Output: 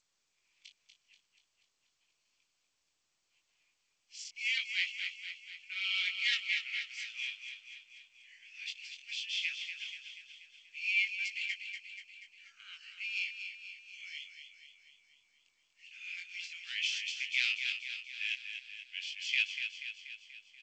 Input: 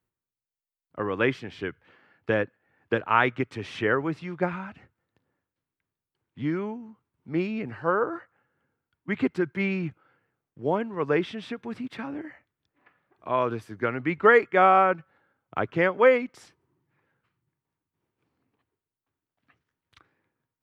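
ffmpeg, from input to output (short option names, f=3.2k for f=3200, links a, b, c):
-filter_complex "[0:a]areverse,highshelf=f=4.5k:g=5,bandreject=f=3.8k:w=6.8,acontrast=71,flanger=delay=20:depth=2.7:speed=0.15,asuperpass=centerf=4600:order=12:qfactor=0.79,asplit=2[a][b];[b]aecho=0:1:241|482|723|964|1205|1446|1687:0.422|0.24|0.137|0.0781|0.0445|0.0254|0.0145[c];[a][c]amix=inputs=2:normalize=0,volume=3dB" -ar 16000 -c:a g722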